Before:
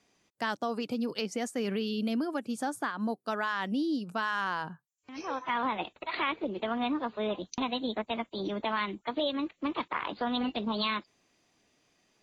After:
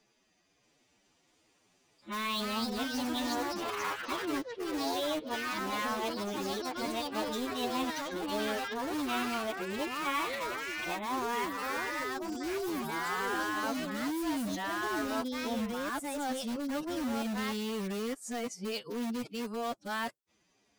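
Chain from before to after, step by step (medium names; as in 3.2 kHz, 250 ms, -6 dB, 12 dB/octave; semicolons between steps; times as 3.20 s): reverse the whole clip; ever faster or slower copies 376 ms, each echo +3 st, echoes 3; in parallel at -7 dB: integer overflow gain 28 dB; on the sum: time stretch by phase-locked vocoder 1.7×; trim -4.5 dB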